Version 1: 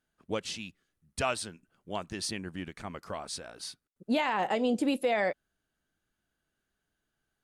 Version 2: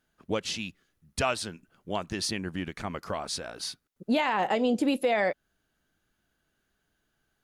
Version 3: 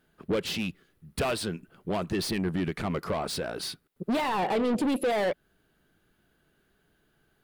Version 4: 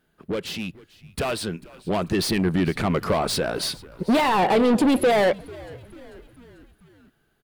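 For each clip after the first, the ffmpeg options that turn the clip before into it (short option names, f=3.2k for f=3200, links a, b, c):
-filter_complex "[0:a]equalizer=f=8.5k:w=4.7:g=-6,asplit=2[a][b];[b]acompressor=threshold=-36dB:ratio=6,volume=1dB[c];[a][c]amix=inputs=2:normalize=0"
-af "asoftclip=type=tanh:threshold=-32dB,equalizer=f=160:t=o:w=0.67:g=5,equalizer=f=400:t=o:w=0.67:g=6,equalizer=f=6.3k:t=o:w=0.67:g=-8,volume=6dB"
-filter_complex "[0:a]dynaudnorm=f=520:g=7:m=8dB,asplit=5[a][b][c][d][e];[b]adelay=443,afreqshift=-80,volume=-21.5dB[f];[c]adelay=886,afreqshift=-160,volume=-26.4dB[g];[d]adelay=1329,afreqshift=-240,volume=-31.3dB[h];[e]adelay=1772,afreqshift=-320,volume=-36.1dB[i];[a][f][g][h][i]amix=inputs=5:normalize=0"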